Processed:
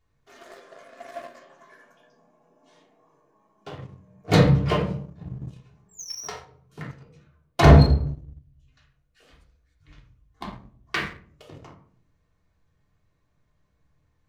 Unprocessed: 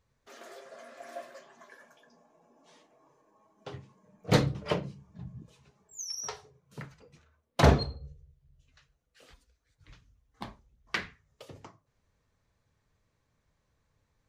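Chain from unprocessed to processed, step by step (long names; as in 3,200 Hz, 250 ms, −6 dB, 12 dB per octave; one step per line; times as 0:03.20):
convolution reverb RT60 0.60 s, pre-delay 3 ms, DRR −2.5 dB
leveller curve on the samples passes 1
level −1 dB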